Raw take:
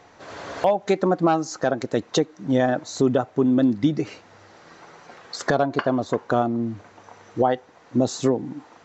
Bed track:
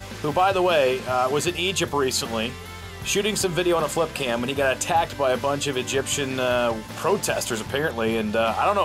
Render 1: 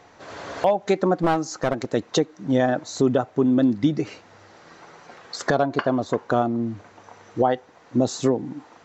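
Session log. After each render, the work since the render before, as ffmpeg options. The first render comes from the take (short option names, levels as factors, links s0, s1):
-filter_complex "[0:a]asettb=1/sr,asplit=3[s0][s1][s2];[s0]atrim=end=1.214[s3];[s1]atrim=start=1.21:end=1.92,asetpts=PTS-STARTPTS,afade=t=in:d=0.004:c=qsin,afade=t=out:st=0.706:d=0.004:c=qsin,aeval=exprs='clip(val(0),-1,0.0841)':c=same[s4];[s2]atrim=start=1.916[s5];[s3][s4]acrossfade=d=0.004:c1=hsin:c2=qsin[s6];[s6][s5]acrossfade=d=0.004:c1=qsin:c2=hsin"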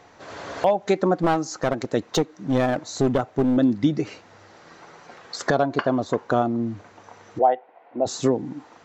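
-filter_complex "[0:a]asettb=1/sr,asplit=3[s0][s1][s2];[s0]atrim=end=2.064[s3];[s1]atrim=start=2.06:end=3.57,asetpts=PTS-STARTPTS,afade=t=in:d=0.004:c=qsin,afade=t=out:st=1.506:d=0.004:c=qsin,aeval=exprs='clip(val(0),-1,0.1)':c=same[s4];[s2]atrim=start=3.566[s5];[s3][s4]acrossfade=d=0.004:c1=hsin:c2=qsin[s6];[s6][s5]acrossfade=d=0.004:c1=qsin:c2=hsin,asplit=3[s7][s8][s9];[s7]afade=t=out:st=7.38:d=0.02[s10];[s8]highpass=480,equalizer=f=710:t=q:w=4:g=8,equalizer=f=1200:t=q:w=4:g=-8,equalizer=f=1700:t=q:w=4:g=-7,lowpass=f=2400:w=0.5412,lowpass=f=2400:w=1.3066,afade=t=in:st=7.38:d=0.02,afade=t=out:st=8.05:d=0.02[s11];[s9]afade=t=in:st=8.05:d=0.02[s12];[s10][s11][s12]amix=inputs=3:normalize=0"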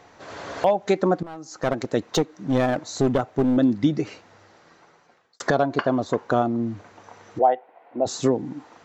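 -filter_complex "[0:a]asplit=3[s0][s1][s2];[s0]atrim=end=1.23,asetpts=PTS-STARTPTS,afade=t=out:st=1.226:d=0.004:c=hsin:silence=0.1[s3];[s1]atrim=start=1.23:end=5.4,asetpts=PTS-STARTPTS,afade=t=in:d=0.45:c=qua:silence=0.1,afade=t=out:st=2.74:d=1.43[s4];[s2]atrim=start=5.4,asetpts=PTS-STARTPTS,afade=t=in:d=0.004:c=hsin[s5];[s3][s4][s5]concat=n=3:v=0:a=1"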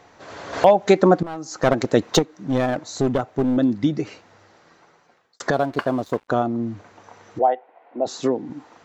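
-filter_complex "[0:a]asplit=3[s0][s1][s2];[s0]afade=t=out:st=5.52:d=0.02[s3];[s1]aeval=exprs='sgn(val(0))*max(abs(val(0))-0.00708,0)':c=same,afade=t=in:st=5.52:d=0.02,afade=t=out:st=6.28:d=0.02[s4];[s2]afade=t=in:st=6.28:d=0.02[s5];[s3][s4][s5]amix=inputs=3:normalize=0,asettb=1/sr,asplit=3[s6][s7][s8];[s6]atrim=end=7.474[s9];[s7]atrim=start=7.47:end=8.5,asetpts=PTS-STARTPTS,afade=t=in:d=0.004:c=qsin,afade=t=out:st=1.026:d=0.004:c=qsin,highpass=190,lowpass=5800[s10];[s8]atrim=start=8.496[s11];[s9][s10]acrossfade=d=0.004:c1=hsin:c2=qsin[s12];[s12][s11]acrossfade=d=0.004:c1=qsin:c2=hsin,asplit=3[s13][s14][s15];[s13]atrim=end=0.532[s16];[s14]atrim=start=0.528:end=2.192,asetpts=PTS-STARTPTS,volume=2[s17];[s15]atrim=start=2.188[s18];[s16][s17]acrossfade=d=0.004:c1=hsin:c2=hsin[s19];[s19][s18]acrossfade=d=0.004:c1=hsin:c2=hsin"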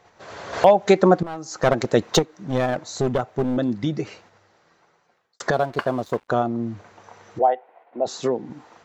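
-af "equalizer=f=280:w=7.3:g=-11,agate=range=0.501:threshold=0.00282:ratio=16:detection=peak"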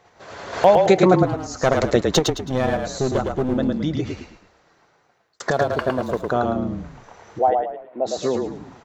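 -filter_complex "[0:a]asplit=5[s0][s1][s2][s3][s4];[s1]adelay=108,afreqshift=-32,volume=0.631[s5];[s2]adelay=216,afreqshift=-64,volume=0.221[s6];[s3]adelay=324,afreqshift=-96,volume=0.0776[s7];[s4]adelay=432,afreqshift=-128,volume=0.0269[s8];[s0][s5][s6][s7][s8]amix=inputs=5:normalize=0"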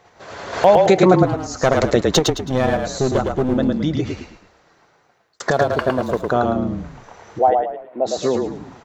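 -af "volume=1.41,alimiter=limit=0.794:level=0:latency=1"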